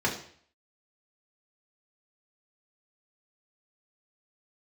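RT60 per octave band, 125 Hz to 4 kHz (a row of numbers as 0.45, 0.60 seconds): 0.60, 0.55, 0.55, 0.55, 0.55, 0.55 seconds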